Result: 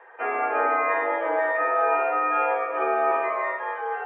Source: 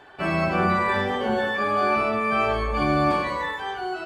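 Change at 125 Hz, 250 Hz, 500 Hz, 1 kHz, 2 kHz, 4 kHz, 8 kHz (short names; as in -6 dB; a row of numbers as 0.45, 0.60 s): under -40 dB, -13.0 dB, +0.5 dB, +0.5 dB, -1.0 dB, under -15 dB, n/a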